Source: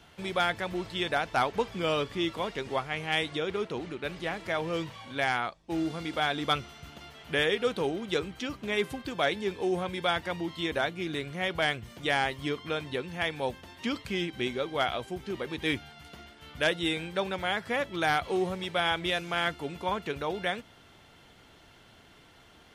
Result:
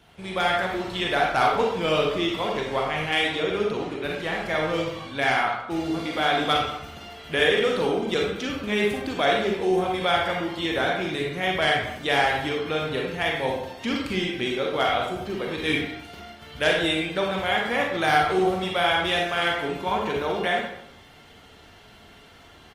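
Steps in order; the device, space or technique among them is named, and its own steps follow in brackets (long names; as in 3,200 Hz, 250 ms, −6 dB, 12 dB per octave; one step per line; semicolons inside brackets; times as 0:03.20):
speakerphone in a meeting room (convolution reverb RT60 0.75 s, pre-delay 35 ms, DRR −1 dB; far-end echo of a speakerphone 160 ms, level −15 dB; automatic gain control gain up to 3 dB; Opus 32 kbit/s 48,000 Hz)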